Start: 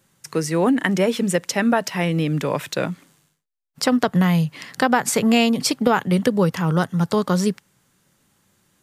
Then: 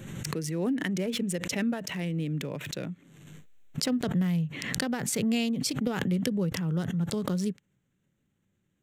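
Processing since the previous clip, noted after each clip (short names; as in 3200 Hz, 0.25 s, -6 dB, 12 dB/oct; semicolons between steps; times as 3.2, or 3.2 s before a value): Wiener smoothing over 9 samples; bell 1000 Hz -14 dB 1.8 oct; backwards sustainer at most 36 dB/s; gain -8 dB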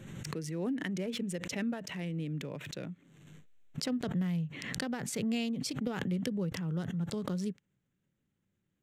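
high shelf 10000 Hz -8.5 dB; gain -5.5 dB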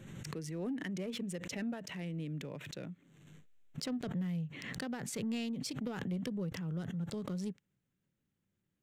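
soft clip -25 dBFS, distortion -22 dB; gain -3 dB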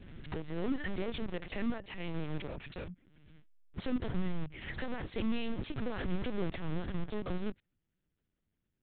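in parallel at -4.5 dB: bit-crush 6-bit; on the sum: LPC vocoder at 8 kHz pitch kept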